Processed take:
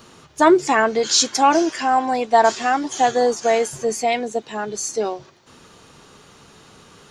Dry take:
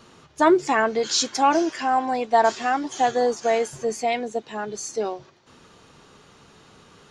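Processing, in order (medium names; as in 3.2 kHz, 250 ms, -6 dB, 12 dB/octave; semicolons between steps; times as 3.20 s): treble shelf 9.1 kHz +10.5 dB; trim +3.5 dB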